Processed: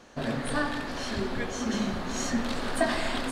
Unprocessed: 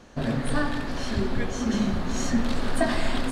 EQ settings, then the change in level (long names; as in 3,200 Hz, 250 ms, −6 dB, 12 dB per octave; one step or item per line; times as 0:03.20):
low-shelf EQ 210 Hz −10 dB
0.0 dB